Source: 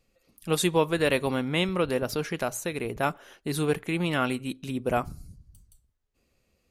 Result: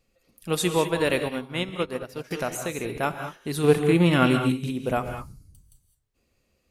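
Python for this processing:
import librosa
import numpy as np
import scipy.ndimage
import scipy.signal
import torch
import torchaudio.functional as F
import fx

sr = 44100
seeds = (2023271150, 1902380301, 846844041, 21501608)

y = fx.hpss(x, sr, part='harmonic', gain_db=9, at=(3.63, 4.65), fade=0.02)
y = fx.rev_gated(y, sr, seeds[0], gate_ms=230, shape='rising', drr_db=6.0)
y = fx.upward_expand(y, sr, threshold_db=-33.0, expansion=2.5, at=(1.24, 2.31))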